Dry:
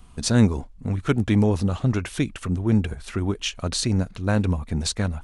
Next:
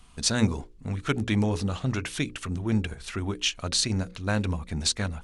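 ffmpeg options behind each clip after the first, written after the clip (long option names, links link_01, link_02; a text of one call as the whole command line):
ffmpeg -i in.wav -af "equalizer=frequency=4200:width=0.31:gain=7.5,bandreject=frequency=60:width_type=h:width=6,bandreject=frequency=120:width_type=h:width=6,bandreject=frequency=180:width_type=h:width=6,bandreject=frequency=240:width_type=h:width=6,bandreject=frequency=300:width_type=h:width=6,bandreject=frequency=360:width_type=h:width=6,bandreject=frequency=420:width_type=h:width=6,bandreject=frequency=480:width_type=h:width=6,bandreject=frequency=540:width_type=h:width=6,volume=-5.5dB" out.wav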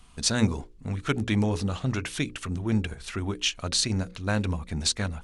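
ffmpeg -i in.wav -af anull out.wav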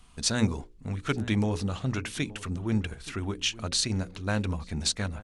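ffmpeg -i in.wav -filter_complex "[0:a]asplit=2[link_01][link_02];[link_02]adelay=874.6,volume=-18dB,highshelf=frequency=4000:gain=-19.7[link_03];[link_01][link_03]amix=inputs=2:normalize=0,volume=-2dB" out.wav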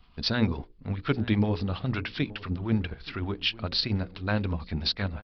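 ffmpeg -i in.wav -filter_complex "[0:a]asplit=2[link_01][link_02];[link_02]aeval=exprs='sgn(val(0))*max(abs(val(0))-0.00355,0)':channel_layout=same,volume=-5.5dB[link_03];[link_01][link_03]amix=inputs=2:normalize=0,aresample=11025,aresample=44100,acrossover=split=780[link_04][link_05];[link_04]aeval=exprs='val(0)*(1-0.5/2+0.5/2*cos(2*PI*9.9*n/s))':channel_layout=same[link_06];[link_05]aeval=exprs='val(0)*(1-0.5/2-0.5/2*cos(2*PI*9.9*n/s))':channel_layout=same[link_07];[link_06][link_07]amix=inputs=2:normalize=0" out.wav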